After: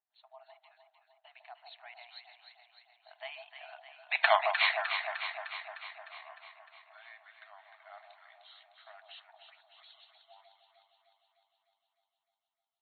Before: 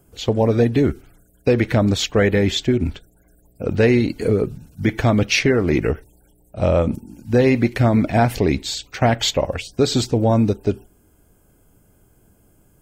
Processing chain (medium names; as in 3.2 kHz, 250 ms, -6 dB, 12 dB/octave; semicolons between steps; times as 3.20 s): Doppler pass-by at 4.26 s, 52 m/s, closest 4.1 m; brick-wall FIR band-pass 630–4400 Hz; echo whose repeats swap between lows and highs 152 ms, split 930 Hz, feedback 79%, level -5 dB; trim +4 dB